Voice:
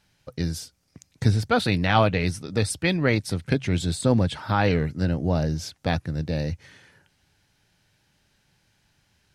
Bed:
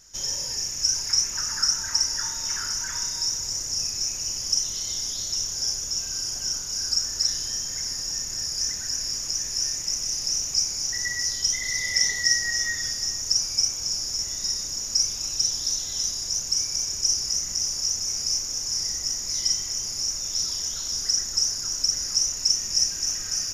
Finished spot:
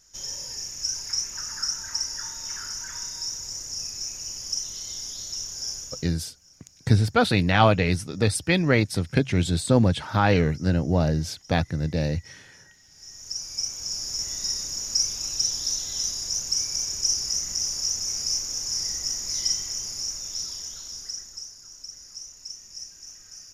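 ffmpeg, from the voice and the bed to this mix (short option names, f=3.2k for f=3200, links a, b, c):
-filter_complex "[0:a]adelay=5650,volume=1.5dB[a];[1:a]volume=21.5dB,afade=t=out:st=5.79:d=0.35:silence=0.0749894,afade=t=in:st=12.9:d=1.39:silence=0.0446684,afade=t=out:st=19.43:d=2.07:silence=0.158489[b];[a][b]amix=inputs=2:normalize=0"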